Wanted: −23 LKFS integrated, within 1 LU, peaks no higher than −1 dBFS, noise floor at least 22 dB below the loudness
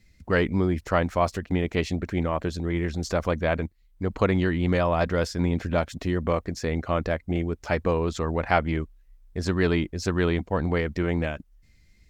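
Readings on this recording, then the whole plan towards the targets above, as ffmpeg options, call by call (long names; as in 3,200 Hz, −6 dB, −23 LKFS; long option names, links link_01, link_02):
integrated loudness −26.0 LKFS; sample peak −6.0 dBFS; target loudness −23.0 LKFS
→ -af "volume=3dB"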